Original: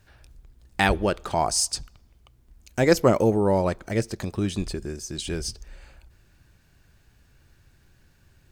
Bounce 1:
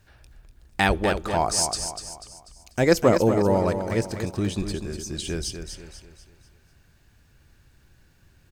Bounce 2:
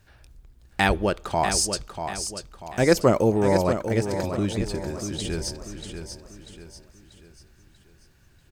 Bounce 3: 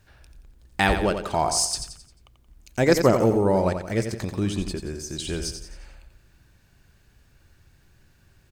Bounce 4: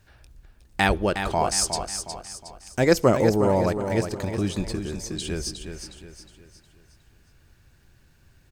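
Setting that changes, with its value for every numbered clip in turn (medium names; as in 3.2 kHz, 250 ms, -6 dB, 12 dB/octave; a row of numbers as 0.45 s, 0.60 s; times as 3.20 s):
feedback delay, time: 245 ms, 640 ms, 88 ms, 363 ms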